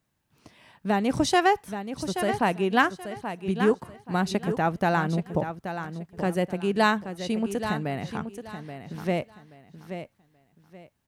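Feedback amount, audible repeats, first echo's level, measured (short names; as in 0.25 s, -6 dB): 25%, 3, -9.5 dB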